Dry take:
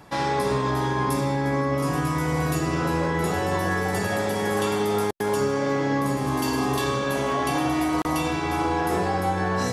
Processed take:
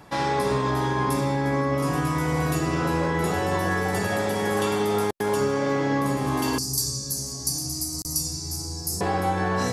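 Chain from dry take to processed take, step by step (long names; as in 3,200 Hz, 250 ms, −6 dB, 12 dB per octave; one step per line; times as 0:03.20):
0:06.58–0:09.01: drawn EQ curve 110 Hz 0 dB, 540 Hz −21 dB, 1,800 Hz −28 dB, 3,300 Hz −26 dB, 4,700 Hz +12 dB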